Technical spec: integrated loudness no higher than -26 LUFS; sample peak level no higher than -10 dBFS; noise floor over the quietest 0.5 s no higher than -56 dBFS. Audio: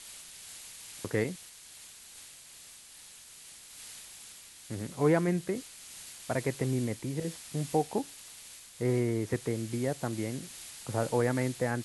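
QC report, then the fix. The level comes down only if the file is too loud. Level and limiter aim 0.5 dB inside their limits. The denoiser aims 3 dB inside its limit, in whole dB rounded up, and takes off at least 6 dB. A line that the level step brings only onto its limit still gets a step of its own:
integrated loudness -32.5 LUFS: OK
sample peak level -13.5 dBFS: OK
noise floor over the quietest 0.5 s -52 dBFS: fail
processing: denoiser 7 dB, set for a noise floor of -52 dBFS

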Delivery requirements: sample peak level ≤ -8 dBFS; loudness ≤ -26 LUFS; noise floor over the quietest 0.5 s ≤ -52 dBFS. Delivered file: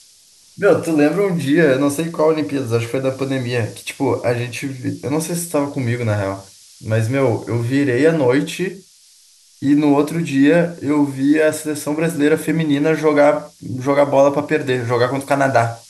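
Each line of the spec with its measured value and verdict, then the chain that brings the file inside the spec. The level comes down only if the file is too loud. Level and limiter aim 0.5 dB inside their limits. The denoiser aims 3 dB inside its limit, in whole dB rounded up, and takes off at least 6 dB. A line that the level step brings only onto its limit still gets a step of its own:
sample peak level -2.5 dBFS: fail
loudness -17.5 LUFS: fail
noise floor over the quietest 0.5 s -50 dBFS: fail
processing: gain -9 dB

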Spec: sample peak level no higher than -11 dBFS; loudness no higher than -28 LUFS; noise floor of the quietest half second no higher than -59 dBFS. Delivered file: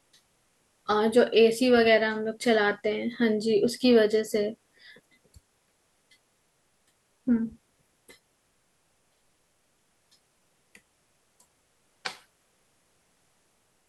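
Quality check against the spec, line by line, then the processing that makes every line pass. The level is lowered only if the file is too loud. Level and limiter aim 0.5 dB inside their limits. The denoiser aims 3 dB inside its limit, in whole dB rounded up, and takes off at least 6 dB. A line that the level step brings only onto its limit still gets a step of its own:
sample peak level -9.0 dBFS: fail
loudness -24.5 LUFS: fail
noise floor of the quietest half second -70 dBFS: OK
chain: gain -4 dB

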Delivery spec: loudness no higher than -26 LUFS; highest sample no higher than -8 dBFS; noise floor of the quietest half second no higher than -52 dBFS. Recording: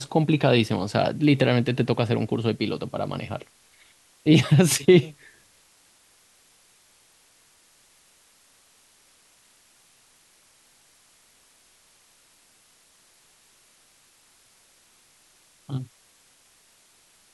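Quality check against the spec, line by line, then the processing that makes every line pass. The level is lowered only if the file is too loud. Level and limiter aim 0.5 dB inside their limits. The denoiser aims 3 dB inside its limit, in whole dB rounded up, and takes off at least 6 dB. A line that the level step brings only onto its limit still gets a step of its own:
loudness -22.5 LUFS: fail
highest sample -4.0 dBFS: fail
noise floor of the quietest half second -59 dBFS: OK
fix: gain -4 dB; limiter -8.5 dBFS

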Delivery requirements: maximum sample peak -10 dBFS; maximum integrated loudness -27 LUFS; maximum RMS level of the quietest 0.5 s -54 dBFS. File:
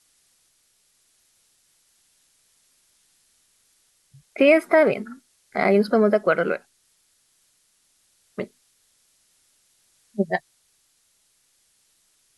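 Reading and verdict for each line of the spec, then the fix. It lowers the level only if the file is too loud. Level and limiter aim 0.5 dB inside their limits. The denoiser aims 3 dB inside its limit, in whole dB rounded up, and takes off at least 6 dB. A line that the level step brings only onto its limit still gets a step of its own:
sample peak -5.5 dBFS: fail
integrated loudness -21.0 LUFS: fail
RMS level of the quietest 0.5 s -65 dBFS: OK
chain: gain -6.5 dB

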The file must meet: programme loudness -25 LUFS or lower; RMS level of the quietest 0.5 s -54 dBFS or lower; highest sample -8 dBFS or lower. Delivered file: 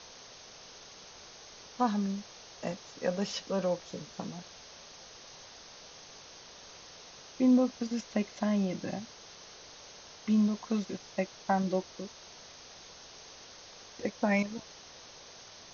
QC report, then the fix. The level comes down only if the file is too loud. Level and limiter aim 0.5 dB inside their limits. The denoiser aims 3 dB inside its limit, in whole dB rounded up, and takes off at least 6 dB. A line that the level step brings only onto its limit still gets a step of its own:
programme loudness -32.5 LUFS: OK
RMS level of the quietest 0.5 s -51 dBFS: fail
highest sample -15.5 dBFS: OK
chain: denoiser 6 dB, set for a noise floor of -51 dBFS

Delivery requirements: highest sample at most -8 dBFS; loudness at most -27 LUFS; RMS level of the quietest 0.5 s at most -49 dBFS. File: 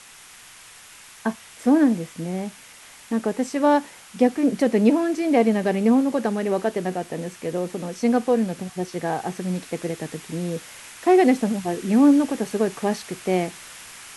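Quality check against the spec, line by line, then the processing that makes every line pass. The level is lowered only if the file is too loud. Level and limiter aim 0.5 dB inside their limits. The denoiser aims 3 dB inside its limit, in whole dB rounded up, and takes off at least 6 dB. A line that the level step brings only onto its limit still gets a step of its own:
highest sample -5.5 dBFS: fail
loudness -22.5 LUFS: fail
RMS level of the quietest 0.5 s -46 dBFS: fail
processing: gain -5 dB

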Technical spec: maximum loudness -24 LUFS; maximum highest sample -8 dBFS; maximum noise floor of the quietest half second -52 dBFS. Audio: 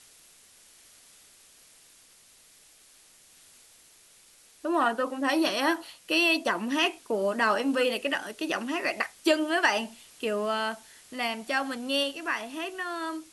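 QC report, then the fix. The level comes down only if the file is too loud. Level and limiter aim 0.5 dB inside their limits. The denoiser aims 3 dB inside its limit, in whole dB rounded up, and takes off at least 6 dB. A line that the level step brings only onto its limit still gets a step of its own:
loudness -27.5 LUFS: OK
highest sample -9.5 dBFS: OK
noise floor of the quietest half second -57 dBFS: OK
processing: none

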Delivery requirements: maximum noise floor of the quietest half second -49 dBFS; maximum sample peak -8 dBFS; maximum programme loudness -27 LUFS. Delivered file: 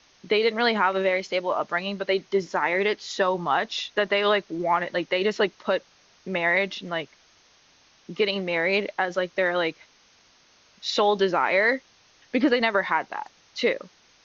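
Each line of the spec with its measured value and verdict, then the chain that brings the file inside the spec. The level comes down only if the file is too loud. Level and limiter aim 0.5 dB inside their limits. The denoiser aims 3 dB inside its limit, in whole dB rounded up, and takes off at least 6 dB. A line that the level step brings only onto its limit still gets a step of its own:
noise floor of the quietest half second -59 dBFS: OK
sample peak -9.5 dBFS: OK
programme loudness -24.5 LUFS: fail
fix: gain -3 dB

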